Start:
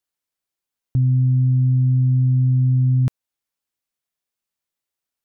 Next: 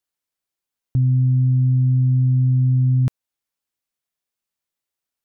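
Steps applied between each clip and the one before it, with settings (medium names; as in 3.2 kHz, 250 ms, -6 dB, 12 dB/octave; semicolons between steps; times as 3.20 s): no audible change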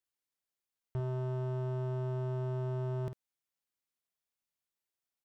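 hard clipper -25.5 dBFS, distortion -8 dB; doubling 50 ms -10 dB; trim -7 dB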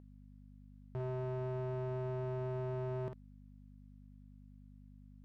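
hum 50 Hz, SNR 13 dB; overdrive pedal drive 15 dB, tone 1.3 kHz, clips at -28.5 dBFS; trim -1.5 dB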